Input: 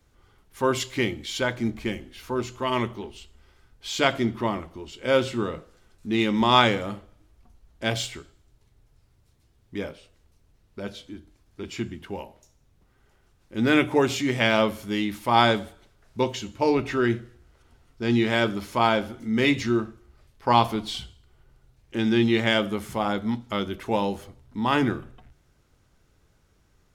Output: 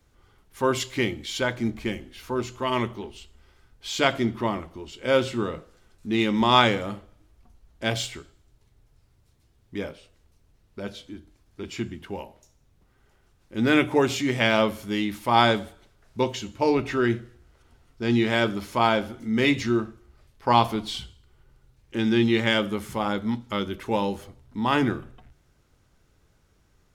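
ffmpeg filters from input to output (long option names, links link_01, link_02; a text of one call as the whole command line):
ffmpeg -i in.wav -filter_complex "[0:a]asettb=1/sr,asplit=3[link_01][link_02][link_03];[link_01]atrim=end=20.874[link_04];[link_02]atrim=start=20.87:end=24.19,asetpts=PTS-STARTPTS,afade=type=in:duration=0.004:curve=qsin,afade=type=out:start_time=3.316:duration=0.004:curve=qsin,bandreject=frequency=690:width=7.6[link_05];[link_03]atrim=start=24.186[link_06];[link_04][link_05]acrossfade=duration=0.004:curve1=hsin:curve2=qsin[link_07];[link_07][link_06]acrossfade=duration=0.004:curve1=qsin:curve2=hsin" out.wav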